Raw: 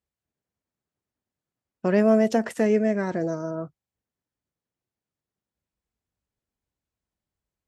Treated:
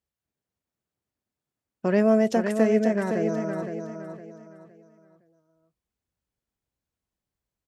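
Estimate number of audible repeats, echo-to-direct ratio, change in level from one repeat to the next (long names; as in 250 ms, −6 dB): 3, −6.5 dB, −10.0 dB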